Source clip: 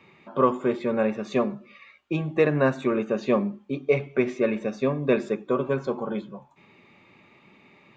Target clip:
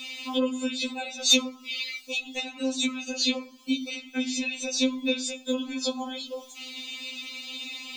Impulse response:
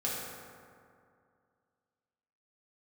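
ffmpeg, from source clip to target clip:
-filter_complex "[0:a]acompressor=threshold=0.0178:ratio=12,aexciter=amount=12.8:drive=6.9:freq=2800,aeval=exprs='0.501*sin(PI/2*1.41*val(0)/0.501)':c=same,asplit=2[s0][s1];[1:a]atrim=start_sample=2205,afade=t=out:st=0.16:d=0.01,atrim=end_sample=7497[s2];[s1][s2]afir=irnorm=-1:irlink=0,volume=0.0501[s3];[s0][s3]amix=inputs=2:normalize=0,afftfilt=real='re*3.46*eq(mod(b,12),0)':imag='im*3.46*eq(mod(b,12),0)':win_size=2048:overlap=0.75,volume=1.33"

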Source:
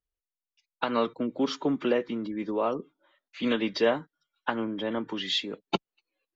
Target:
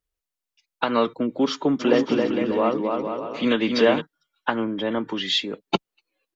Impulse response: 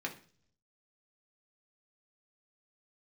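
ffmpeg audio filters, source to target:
-filter_complex "[0:a]asplit=3[s0][s1][s2];[s0]afade=t=out:st=1.79:d=0.02[s3];[s1]aecho=1:1:270|459|591.3|683.9|748.7:0.631|0.398|0.251|0.158|0.1,afade=t=in:st=1.79:d=0.02,afade=t=out:st=4:d=0.02[s4];[s2]afade=t=in:st=4:d=0.02[s5];[s3][s4][s5]amix=inputs=3:normalize=0,volume=1.88"

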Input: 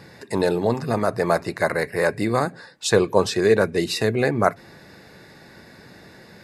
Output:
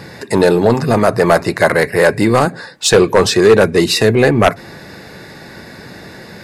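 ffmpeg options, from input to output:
-af "aeval=exprs='0.891*sin(PI/2*2.51*val(0)/0.891)':c=same,aeval=exprs='0.891*(cos(1*acos(clip(val(0)/0.891,-1,1)))-cos(1*PI/2))+0.0224*(cos(5*acos(clip(val(0)/0.891,-1,1)))-cos(5*PI/2))':c=same,volume=0.891"

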